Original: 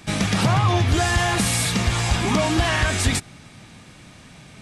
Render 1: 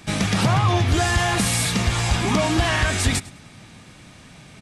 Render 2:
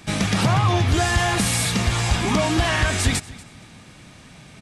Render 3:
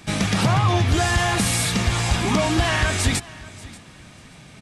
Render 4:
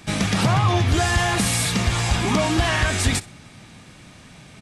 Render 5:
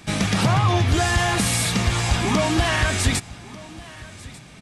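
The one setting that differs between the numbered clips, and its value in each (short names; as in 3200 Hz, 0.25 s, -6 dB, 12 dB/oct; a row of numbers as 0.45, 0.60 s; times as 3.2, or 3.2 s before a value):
feedback echo, time: 104, 237, 584, 62, 1193 ms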